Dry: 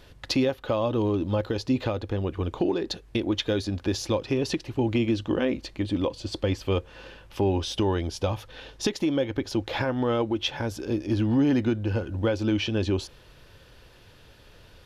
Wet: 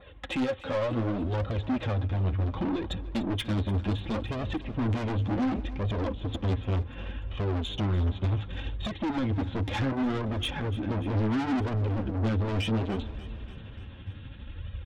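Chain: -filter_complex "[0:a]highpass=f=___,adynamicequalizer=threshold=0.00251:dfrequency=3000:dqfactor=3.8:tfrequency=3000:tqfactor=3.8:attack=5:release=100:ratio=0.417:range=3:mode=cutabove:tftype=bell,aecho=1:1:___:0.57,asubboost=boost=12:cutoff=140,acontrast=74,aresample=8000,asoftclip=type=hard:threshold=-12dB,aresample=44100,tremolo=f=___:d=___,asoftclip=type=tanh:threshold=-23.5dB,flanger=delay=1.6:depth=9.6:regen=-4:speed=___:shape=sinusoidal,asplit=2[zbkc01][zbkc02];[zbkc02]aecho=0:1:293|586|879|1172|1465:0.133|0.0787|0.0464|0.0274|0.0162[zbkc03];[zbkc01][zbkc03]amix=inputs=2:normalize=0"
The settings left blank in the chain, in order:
79, 3.7, 12, 0.38, 0.68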